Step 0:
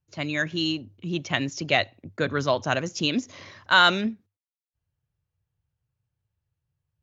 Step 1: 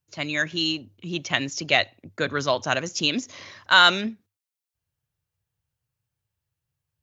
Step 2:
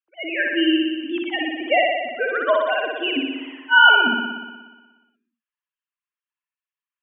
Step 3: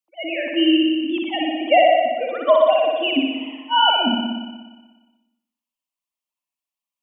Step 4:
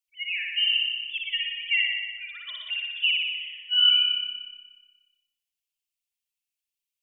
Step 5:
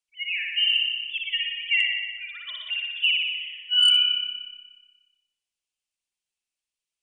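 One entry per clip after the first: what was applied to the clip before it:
spectral tilt +1.5 dB per octave; level +1 dB
three sine waves on the formant tracks; on a send: flutter between parallel walls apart 10.3 metres, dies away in 1.3 s; on the sum: level +1 dB
phaser with its sweep stopped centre 420 Hz, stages 6; on a send at −9 dB: convolution reverb RT60 0.70 s, pre-delay 65 ms; on the sum: level +5.5 dB
inverse Chebyshev band-stop filter 170–950 Hz, stop band 50 dB; level +1.5 dB
gain into a clipping stage and back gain 14.5 dB; downsampling to 22,050 Hz; level +1.5 dB

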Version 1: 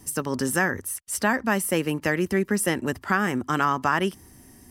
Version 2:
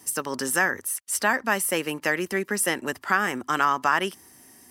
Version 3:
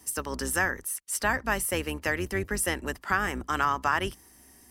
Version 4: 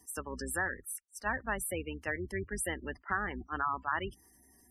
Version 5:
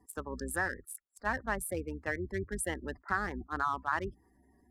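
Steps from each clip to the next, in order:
high-pass filter 630 Hz 6 dB per octave; level +2.5 dB
sub-octave generator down 2 octaves, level 0 dB; level −4 dB
gate on every frequency bin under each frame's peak −15 dB strong; level that may rise only so fast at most 480 dB per second; level −6.5 dB
adaptive Wiener filter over 15 samples; level +1.5 dB

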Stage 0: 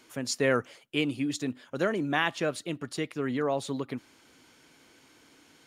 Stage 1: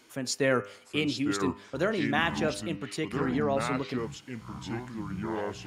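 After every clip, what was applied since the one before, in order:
delay with pitch and tempo change per echo 722 ms, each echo −5 semitones, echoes 3, each echo −6 dB
hum removal 100.8 Hz, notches 31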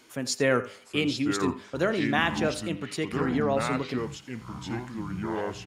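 single-tap delay 84 ms −18 dB
level +2 dB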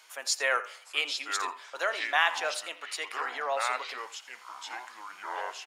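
high-pass filter 690 Hz 24 dB per octave
level +1.5 dB

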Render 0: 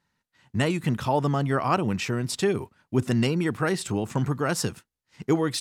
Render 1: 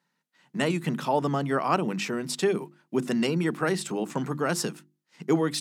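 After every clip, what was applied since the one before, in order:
elliptic high-pass filter 150 Hz
mains-hum notches 50/100/150/200/250/300/350 Hz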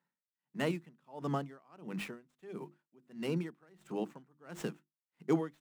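running median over 9 samples
tremolo with a sine in dB 1.5 Hz, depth 32 dB
level −6 dB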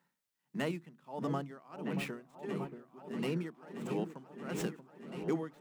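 downward compressor 2 to 1, threshold −47 dBFS, peak gain reduction 12.5 dB
on a send: echo whose low-pass opens from repeat to repeat 631 ms, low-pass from 750 Hz, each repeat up 2 octaves, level −6 dB
on the sum: level +7.5 dB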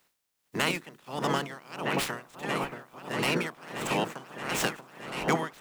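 ceiling on every frequency bin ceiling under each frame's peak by 22 dB
level +7.5 dB

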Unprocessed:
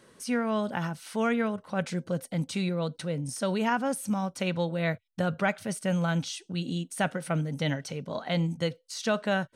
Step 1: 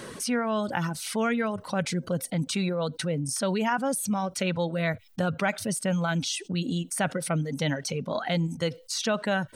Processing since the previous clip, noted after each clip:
reverb reduction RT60 0.86 s
envelope flattener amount 50%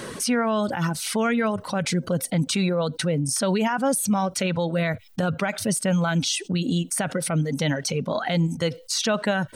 brickwall limiter −19.5 dBFS, peak gain reduction 8 dB
level +5.5 dB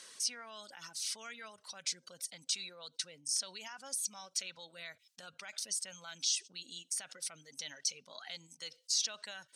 dynamic equaliser 5,300 Hz, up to +4 dB, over −42 dBFS, Q 1.5
resonant band-pass 5,900 Hz, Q 1.2
level −7.5 dB

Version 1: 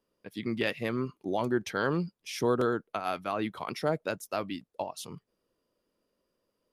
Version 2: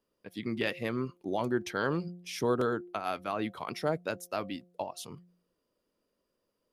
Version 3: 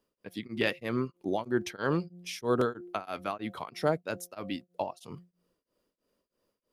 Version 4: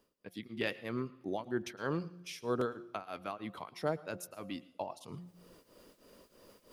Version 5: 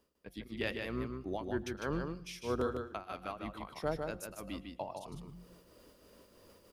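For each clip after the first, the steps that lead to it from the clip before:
hum removal 176.7 Hz, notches 4; level −1.5 dB
tremolo along a rectified sine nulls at 3.1 Hz; level +3.5 dB
reversed playback; upward compression, threshold −32 dBFS; reversed playback; convolution reverb, pre-delay 104 ms, DRR 18.5 dB; level −6.5 dB
sub-octave generator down 2 octaves, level −6 dB; single-tap delay 152 ms −5 dB; level −1.5 dB

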